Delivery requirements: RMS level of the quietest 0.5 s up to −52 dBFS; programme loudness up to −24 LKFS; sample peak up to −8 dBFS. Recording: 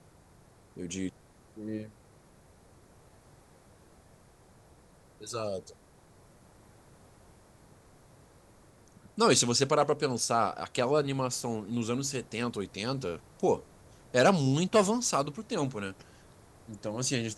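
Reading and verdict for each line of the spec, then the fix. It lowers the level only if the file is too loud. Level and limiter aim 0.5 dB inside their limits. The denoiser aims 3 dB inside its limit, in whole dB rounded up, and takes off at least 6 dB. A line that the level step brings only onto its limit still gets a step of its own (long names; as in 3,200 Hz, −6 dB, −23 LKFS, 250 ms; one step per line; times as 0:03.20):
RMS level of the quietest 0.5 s −59 dBFS: in spec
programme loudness −30.0 LKFS: in spec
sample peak −11.0 dBFS: in spec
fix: no processing needed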